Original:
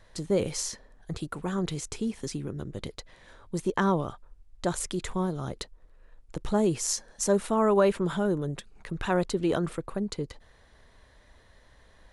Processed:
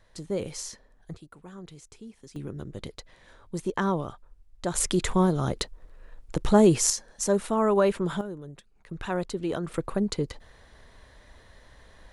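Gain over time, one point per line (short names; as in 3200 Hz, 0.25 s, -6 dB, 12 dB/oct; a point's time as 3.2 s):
-4.5 dB
from 1.16 s -14 dB
from 2.36 s -1.5 dB
from 4.75 s +7 dB
from 6.9 s 0 dB
from 8.21 s -10.5 dB
from 8.91 s -3.5 dB
from 9.74 s +4.5 dB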